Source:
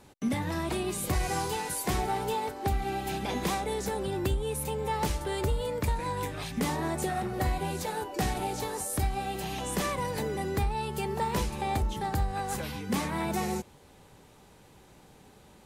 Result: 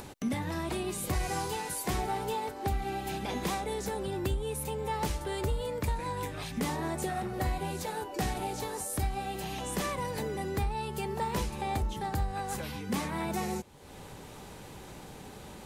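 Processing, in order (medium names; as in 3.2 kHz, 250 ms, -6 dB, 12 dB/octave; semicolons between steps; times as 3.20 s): upward compressor, threshold -32 dBFS; trim -2.5 dB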